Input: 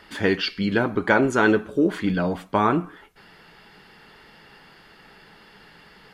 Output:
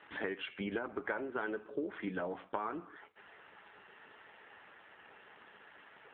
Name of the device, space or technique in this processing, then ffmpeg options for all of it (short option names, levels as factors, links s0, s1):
voicemail: -af "highpass=370,lowpass=2800,acompressor=threshold=0.0282:ratio=8,volume=0.75" -ar 8000 -c:a libopencore_amrnb -b:a 7400